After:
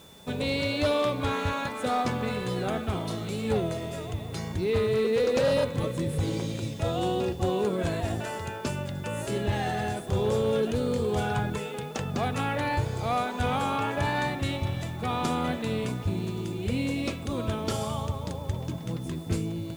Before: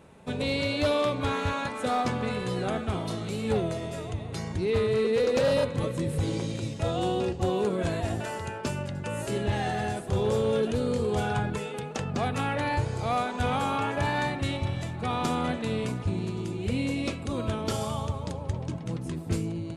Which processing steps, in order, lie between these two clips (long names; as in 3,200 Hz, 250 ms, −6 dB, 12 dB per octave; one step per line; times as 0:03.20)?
steady tone 3,500 Hz −54 dBFS
bit reduction 9 bits